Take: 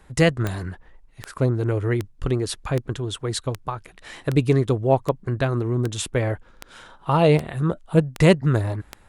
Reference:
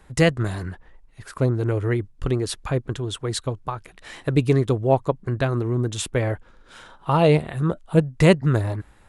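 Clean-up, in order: clip repair -5.5 dBFS; de-click

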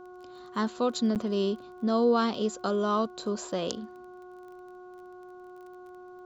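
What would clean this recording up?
de-click; de-hum 363.6 Hz, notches 4; interpolate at 1.15 s, 8.4 ms

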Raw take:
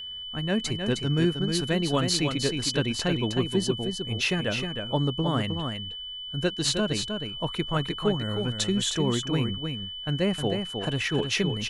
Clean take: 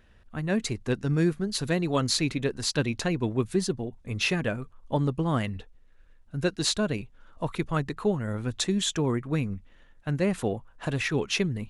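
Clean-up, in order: band-stop 3 kHz, Q 30; inverse comb 312 ms -6 dB

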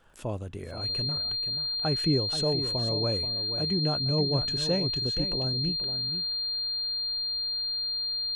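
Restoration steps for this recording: de-click; band-stop 4.2 kHz, Q 30; inverse comb 481 ms -10.5 dB

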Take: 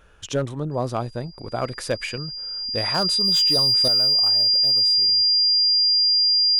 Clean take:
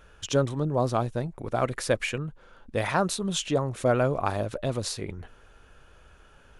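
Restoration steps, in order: clip repair -15 dBFS; band-stop 4.8 kHz, Q 30; gain correction +11 dB, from 3.88 s

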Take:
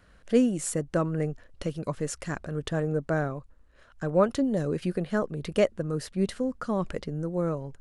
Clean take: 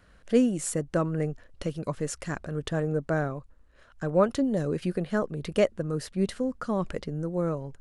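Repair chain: nothing to do

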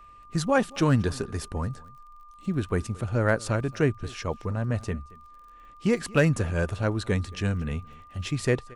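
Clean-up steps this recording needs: clip repair -11 dBFS; de-click; band-stop 1.2 kHz, Q 30; inverse comb 225 ms -22.5 dB

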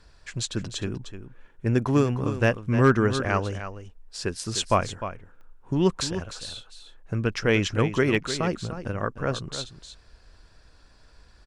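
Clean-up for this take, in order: clip repair -8.5 dBFS; de-click; inverse comb 304 ms -11 dB

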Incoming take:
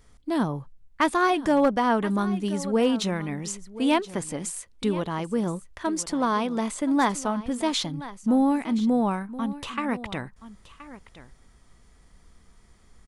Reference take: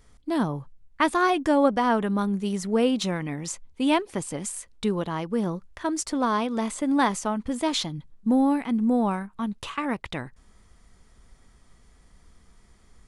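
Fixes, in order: clip repair -13 dBFS; inverse comb 1024 ms -16 dB

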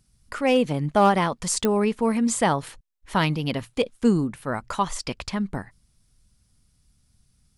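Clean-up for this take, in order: clip repair -10.5 dBFS; de-click

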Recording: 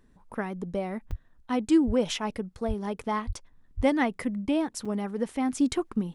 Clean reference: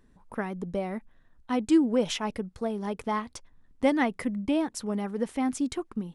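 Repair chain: de-plosive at 1.09/1.86/2.67/3.26/3.76 s; interpolate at 1.11/4.85 s, 5.2 ms; trim 0 dB, from 5.58 s -4.5 dB

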